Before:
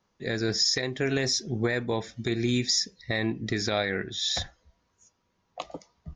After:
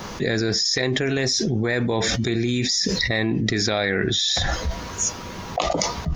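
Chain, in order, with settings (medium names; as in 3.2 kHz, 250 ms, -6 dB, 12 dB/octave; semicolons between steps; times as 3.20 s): level flattener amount 100%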